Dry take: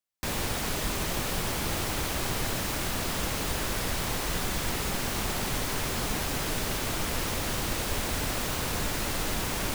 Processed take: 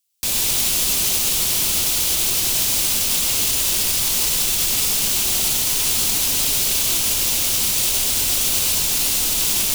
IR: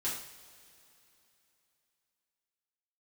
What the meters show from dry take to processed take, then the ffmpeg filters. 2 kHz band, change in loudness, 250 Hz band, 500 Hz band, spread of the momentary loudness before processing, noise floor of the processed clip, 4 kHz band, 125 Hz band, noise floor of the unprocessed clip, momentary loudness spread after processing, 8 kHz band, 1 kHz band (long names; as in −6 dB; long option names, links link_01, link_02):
+4.5 dB, +13.5 dB, −0.5 dB, −1.0 dB, 0 LU, −20 dBFS, +13.0 dB, −1.5 dB, −32 dBFS, 0 LU, +16.5 dB, −1.0 dB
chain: -filter_complex "[0:a]alimiter=limit=-23dB:level=0:latency=1,aexciter=amount=5.1:drive=5.1:freq=2500,asplit=2[link_01][link_02];[1:a]atrim=start_sample=2205,adelay=97[link_03];[link_02][link_03]afir=irnorm=-1:irlink=0,volume=-6.5dB[link_04];[link_01][link_04]amix=inputs=2:normalize=0"